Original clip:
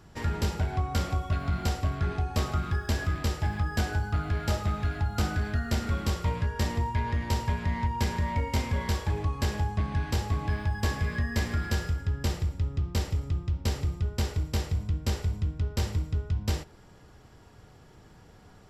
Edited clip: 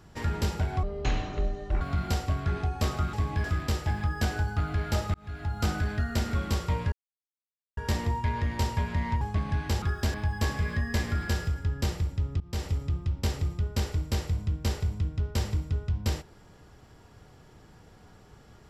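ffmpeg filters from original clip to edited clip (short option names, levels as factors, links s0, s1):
-filter_complex "[0:a]asplit=11[s0][s1][s2][s3][s4][s5][s6][s7][s8][s9][s10];[s0]atrim=end=0.834[s11];[s1]atrim=start=0.83:end=1.36,asetpts=PTS-STARTPTS,asetrate=23814,aresample=44100,atrim=end_sample=43283,asetpts=PTS-STARTPTS[s12];[s2]atrim=start=1.356:end=2.682[s13];[s3]atrim=start=10.248:end=10.562[s14];[s4]atrim=start=2.998:end=4.7,asetpts=PTS-STARTPTS,afade=t=out:st=1.698:d=0.004:c=hsin[s15];[s5]atrim=start=4.7:end=6.48,asetpts=PTS-STARTPTS,afade=t=in:d=0.48,afade=t=out:st=1.776:d=0.004:c=hsin,apad=pad_dur=0.85[s16];[s6]atrim=start=6.48:end=7.922,asetpts=PTS-STARTPTS,afade=t=in:d=0.004:c=hsin[s17];[s7]atrim=start=9.638:end=10.252[s18];[s8]atrim=start=2.678:end=3.002[s19];[s9]atrim=start=10.558:end=12.82,asetpts=PTS-STARTPTS,afade=t=out:st=2.258:d=0.004:c=hsin:silence=0.1[s20];[s10]atrim=start=12.82,asetpts=PTS-STARTPTS,afade=t=in:d=0.27:silence=0.1[s21];[s11][s12]acrossfade=d=0.004:c1=hsin:c2=hsin[s22];[s22][s13]acrossfade=d=0.004:c1=hsin:c2=hsin[s23];[s23][s14]acrossfade=d=0.004:c1=hsin:c2=hsin[s24];[s15][s16][s17]concat=n=3:v=0:a=1[s25];[s24][s25]acrossfade=d=0.004:c1=hsin:c2=hsin[s26];[s26][s18]acrossfade=d=0.004:c1=hsin:c2=hsin[s27];[s27][s19]acrossfade=d=0.004:c1=hsin:c2=hsin[s28];[s20][s21]concat=n=2:v=0:a=1[s29];[s28][s29]acrossfade=d=0.004:c1=hsin:c2=hsin"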